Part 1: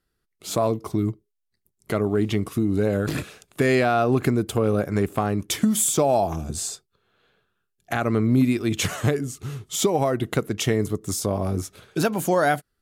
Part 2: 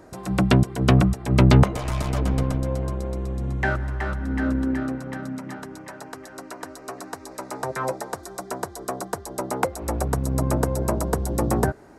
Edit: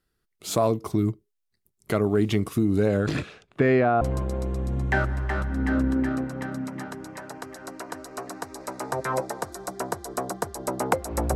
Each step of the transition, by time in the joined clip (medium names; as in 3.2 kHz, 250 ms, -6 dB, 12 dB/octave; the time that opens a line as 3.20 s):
part 1
2.79–4.01 s: low-pass 11 kHz -> 1.1 kHz
4.01 s: go over to part 2 from 2.72 s